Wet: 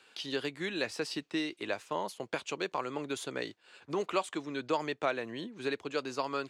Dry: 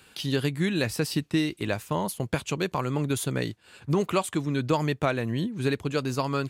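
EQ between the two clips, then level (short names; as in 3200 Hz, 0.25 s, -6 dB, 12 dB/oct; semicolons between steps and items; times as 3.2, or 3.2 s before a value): three-band isolator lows -21 dB, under 290 Hz, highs -20 dB, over 7700 Hz; -4.5 dB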